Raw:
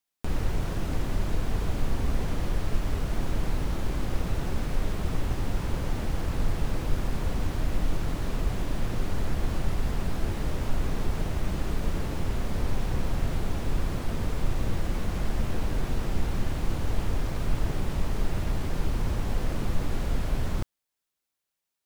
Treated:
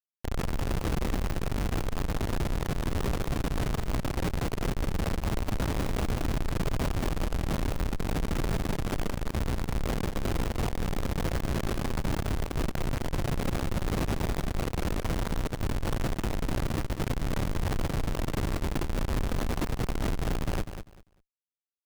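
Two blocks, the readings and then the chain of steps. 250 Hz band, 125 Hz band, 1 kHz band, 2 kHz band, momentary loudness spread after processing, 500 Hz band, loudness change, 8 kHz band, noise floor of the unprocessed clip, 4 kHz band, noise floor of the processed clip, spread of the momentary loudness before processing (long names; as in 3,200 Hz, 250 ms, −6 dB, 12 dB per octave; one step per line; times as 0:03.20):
+1.5 dB, −0.5 dB, +2.0 dB, +2.0 dB, 2 LU, +2.0 dB, 0.0 dB, +2.0 dB, −85 dBFS, +2.0 dB, −56 dBFS, 1 LU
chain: comparator with hysteresis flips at −36 dBFS
repeating echo 197 ms, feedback 20%, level −9.5 dB
level −2.5 dB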